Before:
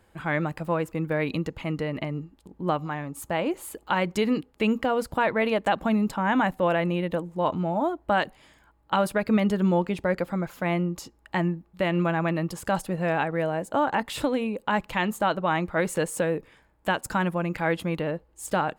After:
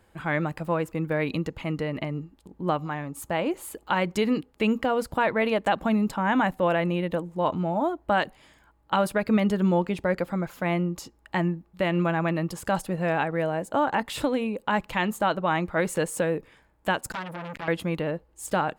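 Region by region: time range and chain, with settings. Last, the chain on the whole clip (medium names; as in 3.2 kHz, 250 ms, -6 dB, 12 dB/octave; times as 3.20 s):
17.12–17.68 s: comb 7.3 ms, depth 78% + compression 5:1, threshold -25 dBFS + transformer saturation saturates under 1.8 kHz
whole clip: none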